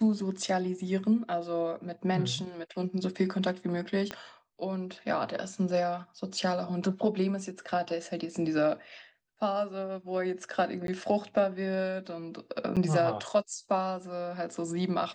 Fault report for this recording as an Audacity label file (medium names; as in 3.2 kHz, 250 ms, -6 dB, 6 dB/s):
4.110000	4.110000	pop -19 dBFS
10.870000	10.880000	dropout 12 ms
12.760000	12.770000	dropout 7 ms